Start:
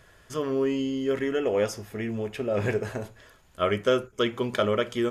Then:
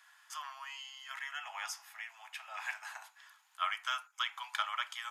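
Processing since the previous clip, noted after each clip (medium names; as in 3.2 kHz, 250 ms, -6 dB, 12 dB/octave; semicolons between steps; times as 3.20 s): steep high-pass 790 Hz 72 dB/octave; trim -4 dB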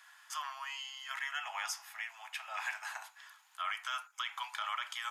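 peak limiter -29.5 dBFS, peak gain reduction 11.5 dB; trim +3.5 dB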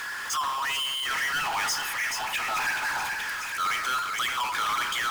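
resonances exaggerated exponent 1.5; two-band feedback delay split 1.4 kHz, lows 81 ms, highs 429 ms, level -11 dB; power-law waveshaper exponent 0.35; trim +4 dB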